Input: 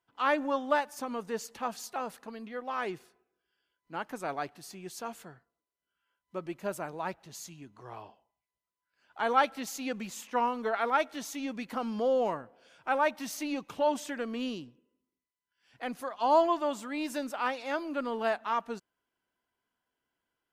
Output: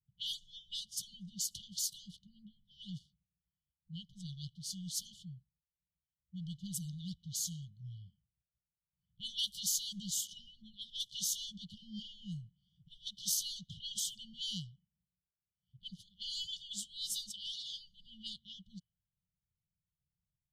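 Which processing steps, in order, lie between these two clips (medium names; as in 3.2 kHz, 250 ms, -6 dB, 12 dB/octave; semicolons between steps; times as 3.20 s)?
brick-wall FIR band-stop 190–2900 Hz; level-controlled noise filter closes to 560 Hz, open at -43 dBFS; trim +8 dB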